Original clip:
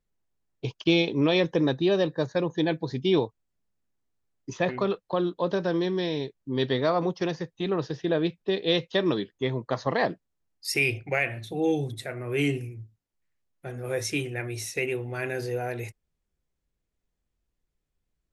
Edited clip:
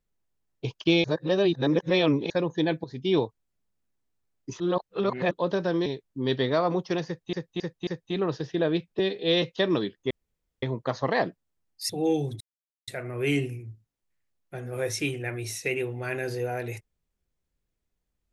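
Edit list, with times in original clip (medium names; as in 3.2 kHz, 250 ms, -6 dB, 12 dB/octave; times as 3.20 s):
1.04–2.30 s: reverse
2.84–3.19 s: fade in, from -12 dB
4.60–5.31 s: reverse
5.86–6.17 s: delete
7.37–7.64 s: loop, 4 plays
8.49–8.78 s: stretch 1.5×
9.46 s: insert room tone 0.52 s
10.73–11.48 s: delete
11.99 s: insert silence 0.47 s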